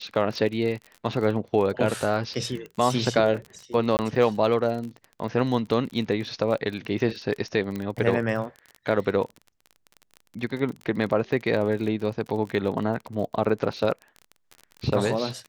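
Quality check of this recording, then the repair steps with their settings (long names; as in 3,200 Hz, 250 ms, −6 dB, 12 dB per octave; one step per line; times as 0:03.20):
surface crackle 31 per second −32 dBFS
0:03.97–0:03.99: drop-out 19 ms
0:07.76: click −19 dBFS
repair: click removal
repair the gap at 0:03.97, 19 ms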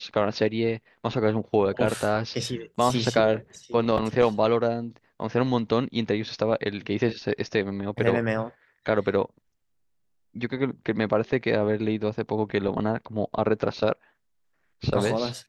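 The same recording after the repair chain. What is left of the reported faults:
0:07.76: click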